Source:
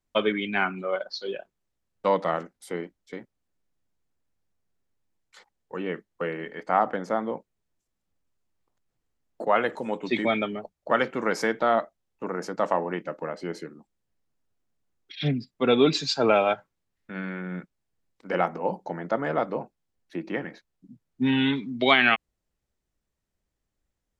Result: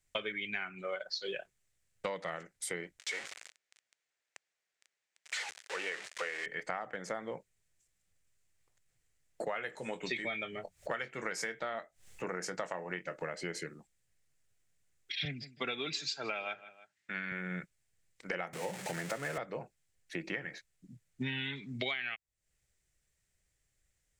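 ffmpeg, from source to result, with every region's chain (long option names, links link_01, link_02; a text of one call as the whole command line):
ffmpeg -i in.wav -filter_complex "[0:a]asettb=1/sr,asplit=3[link_01][link_02][link_03];[link_01]atrim=end=2.994[link_04];[link_02]atrim=start=2.99:end=6.46,asetpts=PTS-STARTPTS,afade=type=in:duration=0.004:curve=qsin,afade=type=out:start_time=3.466:duration=0.004:curve=qsin,aeval=exprs='val(0)+0.5*0.0237*sgn(val(0))':channel_layout=same,highpass=550,lowpass=5200[link_05];[link_03]atrim=start=6.456[link_06];[link_04][link_05]acrossfade=duration=0.004:curve1=hsin:curve2=qsin[link_07];[link_07][link_06]acrossfade=duration=0.004:curve1=qsin:curve2=hsin,asettb=1/sr,asplit=3[link_08][link_09][link_10];[link_08]atrim=end=9.524[link_11];[link_09]atrim=start=9.52:end=13.23,asetpts=PTS-STARTPTS,afade=type=in:duration=0.004:curve=qsin,afade=type=out:start_time=3.706:duration=0.004:curve=qsin,asplit=2[link_12][link_13];[link_13]adelay=22,volume=-12dB[link_14];[link_12][link_14]amix=inputs=2:normalize=0,atrim=end_sample=163611,acompressor=mode=upward:threshold=-39dB:ratio=2.5:attack=3.2:release=140:knee=2.83:detection=peak[link_15];[link_10]atrim=start=13.226[link_16];[link_11][link_15]acrossfade=duration=0.004:curve1=hsin:curve2=qsin[link_17];[link_17][link_16]acrossfade=duration=0.004:curve1=qsin:curve2=hsin,asettb=1/sr,asplit=3[link_18][link_19][link_20];[link_18]atrim=end=15.254[link_21];[link_19]atrim=start=15.25:end=17.32,asetpts=PTS-STARTPTS,afade=type=in:duration=0.004:curve=qsin,afade=type=out:start_time=2.066:duration=0.004:curve=qsin,highpass=210,lowpass=6900,equalizer=frequency=490:width=1.7:gain=-7,asplit=2[link_22][link_23];[link_23]adelay=158,lowpass=frequency=3800:poles=1,volume=-21.5dB,asplit=2[link_24][link_25];[link_25]adelay=158,lowpass=frequency=3800:poles=1,volume=0.29[link_26];[link_22][link_24][link_26]amix=inputs=3:normalize=0,atrim=end_sample=91287[link_27];[link_20]atrim=start=17.316[link_28];[link_21][link_27]acrossfade=duration=0.004:curve1=hsin:curve2=qsin[link_29];[link_29][link_28]acrossfade=duration=0.004:curve1=qsin:curve2=hsin,asettb=1/sr,asplit=3[link_30][link_31][link_32];[link_30]atrim=end=18.534[link_33];[link_31]atrim=start=18.53:end=19.38,asetpts=PTS-STARTPTS,afade=type=in:duration=0.004:curve=qsin,afade=type=out:start_time=0.846:duration=0.004:curve=qsin,aeval=exprs='val(0)+0.5*0.0224*sgn(val(0))':channel_layout=same,highpass=frequency=110:width=0.5412,highpass=frequency=110:width=1.3066[link_34];[link_32]atrim=start=19.376[link_35];[link_33][link_34]acrossfade=duration=0.004:curve1=hsin:curve2=qsin[link_36];[link_36][link_35]acrossfade=duration=0.004:curve1=qsin:curve2=hsin,equalizer=frequency=125:width_type=o:width=1:gain=4,equalizer=frequency=250:width_type=o:width=1:gain=-10,equalizer=frequency=1000:width_type=o:width=1:gain=-7,equalizer=frequency=2000:width_type=o:width=1:gain=8,equalizer=frequency=8000:width_type=o:width=1:gain=11,acompressor=threshold=-35dB:ratio=12,volume=1dB" out.wav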